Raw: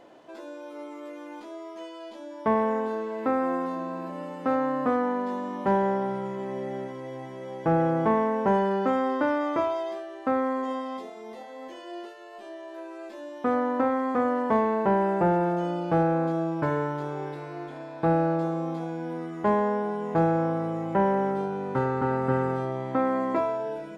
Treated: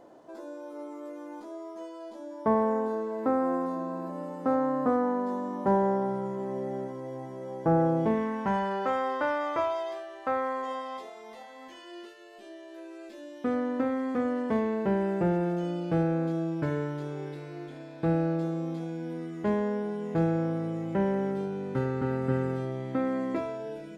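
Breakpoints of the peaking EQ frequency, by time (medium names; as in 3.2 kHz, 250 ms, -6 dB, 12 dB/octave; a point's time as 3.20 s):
peaking EQ -12 dB 1.4 oct
7.83 s 2.7 kHz
8.25 s 710 Hz
8.81 s 240 Hz
11.13 s 240 Hz
12.31 s 950 Hz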